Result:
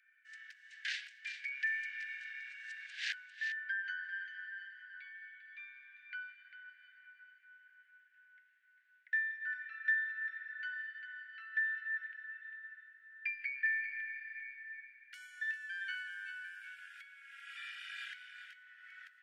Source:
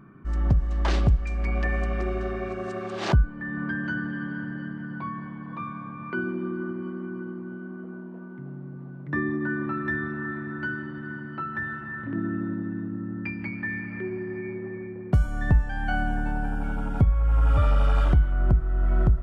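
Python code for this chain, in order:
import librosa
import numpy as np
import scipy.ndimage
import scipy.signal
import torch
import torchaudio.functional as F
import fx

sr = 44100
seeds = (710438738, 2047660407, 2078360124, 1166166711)

y = scipy.signal.sosfilt(scipy.signal.butter(16, 1600.0, 'highpass', fs=sr, output='sos'), x)
y = fx.high_shelf(y, sr, hz=3900.0, db=-11.5)
y = y + 10.0 ** (-10.0 / 20.0) * np.pad(y, (int(398 * sr / 1000.0), 0))[:len(y)]
y = F.gain(torch.from_numpy(y), 1.0).numpy()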